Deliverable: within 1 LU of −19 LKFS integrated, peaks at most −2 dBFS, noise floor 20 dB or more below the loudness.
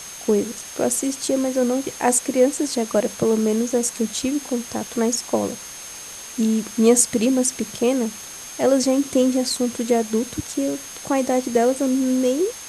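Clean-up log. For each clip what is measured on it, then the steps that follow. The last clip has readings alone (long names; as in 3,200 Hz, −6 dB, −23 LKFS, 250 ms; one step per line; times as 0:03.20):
interfering tone 6,400 Hz; level of the tone −37 dBFS; background noise floor −37 dBFS; target noise floor −41 dBFS; integrated loudness −21.0 LKFS; sample peak −3.0 dBFS; target loudness −19.0 LKFS
→ notch filter 6,400 Hz, Q 30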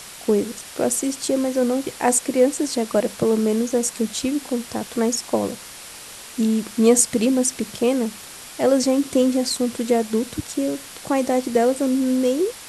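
interfering tone none found; background noise floor −39 dBFS; target noise floor −41 dBFS
→ broadband denoise 6 dB, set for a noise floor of −39 dBFS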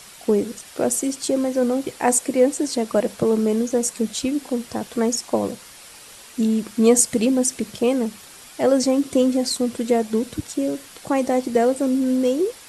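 background noise floor −44 dBFS; integrated loudness −21.0 LKFS; sample peak −2.5 dBFS; target loudness −19.0 LKFS
→ level +2 dB
brickwall limiter −2 dBFS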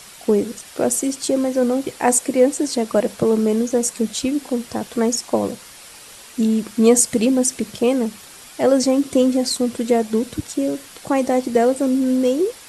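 integrated loudness −19.0 LKFS; sample peak −2.0 dBFS; background noise floor −42 dBFS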